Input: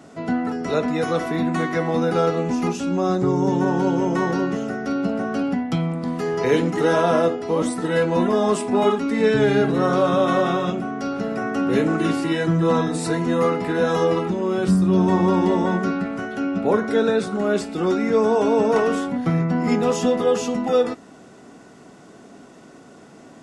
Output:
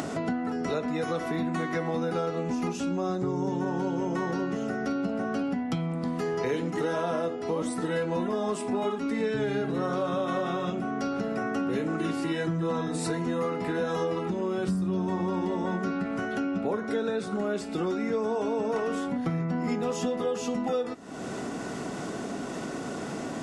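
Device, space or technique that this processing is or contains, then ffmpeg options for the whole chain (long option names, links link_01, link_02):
upward and downward compression: -af "acompressor=mode=upward:threshold=-26dB:ratio=2.5,acompressor=threshold=-30dB:ratio=4,volume=2dB"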